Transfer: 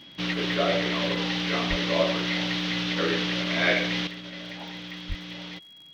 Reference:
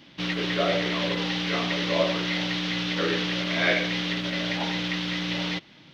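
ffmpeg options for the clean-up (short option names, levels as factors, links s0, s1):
-filter_complex "[0:a]adeclick=t=4,bandreject=f=3300:w=30,asplit=3[s0][s1][s2];[s0]afade=t=out:st=1.69:d=0.02[s3];[s1]highpass=f=140:w=0.5412,highpass=f=140:w=1.3066,afade=t=in:st=1.69:d=0.02,afade=t=out:st=1.81:d=0.02[s4];[s2]afade=t=in:st=1.81:d=0.02[s5];[s3][s4][s5]amix=inputs=3:normalize=0,asplit=3[s6][s7][s8];[s6]afade=t=out:st=5.08:d=0.02[s9];[s7]highpass=f=140:w=0.5412,highpass=f=140:w=1.3066,afade=t=in:st=5.08:d=0.02,afade=t=out:st=5.2:d=0.02[s10];[s8]afade=t=in:st=5.2:d=0.02[s11];[s9][s10][s11]amix=inputs=3:normalize=0,asetnsamples=n=441:p=0,asendcmd='4.07 volume volume 10.5dB',volume=1"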